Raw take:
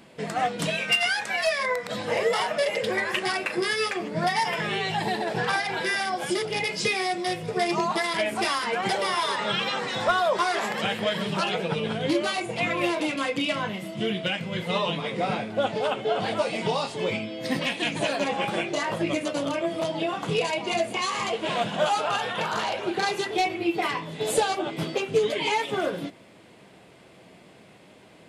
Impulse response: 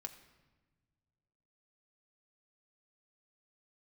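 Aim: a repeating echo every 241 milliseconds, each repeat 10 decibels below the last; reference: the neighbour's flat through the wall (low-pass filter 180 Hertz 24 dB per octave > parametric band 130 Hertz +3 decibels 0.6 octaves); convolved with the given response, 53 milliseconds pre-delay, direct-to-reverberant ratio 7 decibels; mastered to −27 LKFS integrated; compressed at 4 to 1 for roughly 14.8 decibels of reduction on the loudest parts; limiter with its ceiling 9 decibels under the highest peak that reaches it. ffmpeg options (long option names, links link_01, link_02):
-filter_complex "[0:a]acompressor=threshold=-37dB:ratio=4,alimiter=level_in=8dB:limit=-24dB:level=0:latency=1,volume=-8dB,aecho=1:1:241|482|723|964:0.316|0.101|0.0324|0.0104,asplit=2[link_01][link_02];[1:a]atrim=start_sample=2205,adelay=53[link_03];[link_02][link_03]afir=irnorm=-1:irlink=0,volume=-3dB[link_04];[link_01][link_04]amix=inputs=2:normalize=0,lowpass=frequency=180:width=0.5412,lowpass=frequency=180:width=1.3066,equalizer=frequency=130:width_type=o:width=0.6:gain=3,volume=26dB"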